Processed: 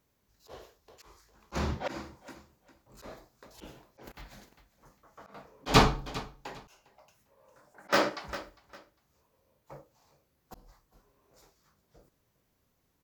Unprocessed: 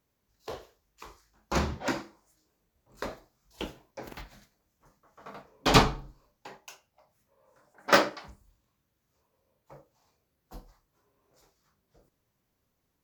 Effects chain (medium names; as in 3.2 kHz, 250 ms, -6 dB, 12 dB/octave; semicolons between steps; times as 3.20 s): feedback delay 403 ms, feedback 23%, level -21.5 dB; slow attack 189 ms; trim +3 dB